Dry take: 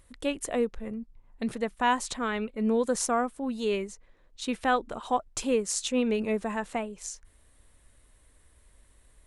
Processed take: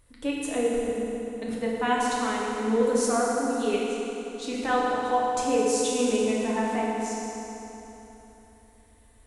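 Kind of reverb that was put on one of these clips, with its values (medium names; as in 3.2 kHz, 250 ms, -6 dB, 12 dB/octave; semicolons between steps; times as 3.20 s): FDN reverb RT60 3.5 s, high-frequency decay 0.75×, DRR -5.5 dB; trim -4 dB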